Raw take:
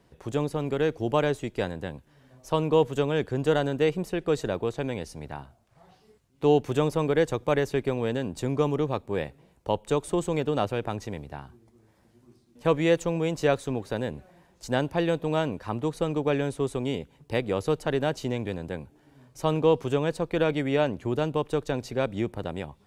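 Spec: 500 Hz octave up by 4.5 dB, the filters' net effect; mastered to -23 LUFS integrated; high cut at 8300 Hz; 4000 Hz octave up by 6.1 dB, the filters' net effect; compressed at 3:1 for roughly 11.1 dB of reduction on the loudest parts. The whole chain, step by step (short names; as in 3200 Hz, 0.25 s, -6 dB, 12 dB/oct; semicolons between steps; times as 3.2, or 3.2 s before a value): LPF 8300 Hz; bell 500 Hz +5 dB; bell 4000 Hz +8 dB; compressor 3:1, threshold -28 dBFS; gain +9 dB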